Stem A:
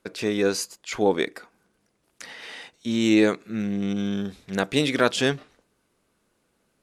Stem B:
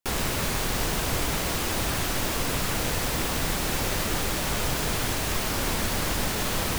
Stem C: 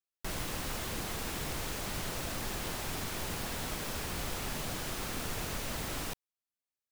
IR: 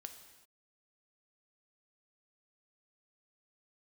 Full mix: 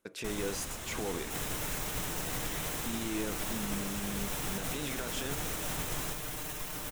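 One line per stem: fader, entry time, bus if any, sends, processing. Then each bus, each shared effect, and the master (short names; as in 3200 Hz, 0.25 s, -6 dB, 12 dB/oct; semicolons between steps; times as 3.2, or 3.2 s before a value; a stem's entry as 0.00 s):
-1.0 dB, 0.00 s, bus A, no send, dry
-7.0 dB, 1.25 s, bus A, no send, comb 6.6 ms, depth 89%
-1.5 dB, 0.00 s, no bus, no send, bell 7700 Hz +4 dB 0.89 oct
bus A: 0.0 dB, high shelf 8300 Hz +7.5 dB; limiter -27 dBFS, peak gain reduction 22 dB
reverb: off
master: bell 4600 Hz -6.5 dB 0.25 oct; upward expander 1.5:1, over -47 dBFS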